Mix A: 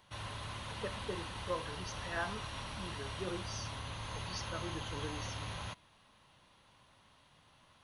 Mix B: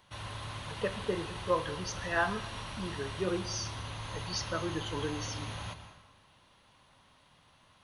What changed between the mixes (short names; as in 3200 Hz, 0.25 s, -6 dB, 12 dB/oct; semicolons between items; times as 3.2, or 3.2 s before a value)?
speech +8.0 dB; reverb: on, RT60 1.2 s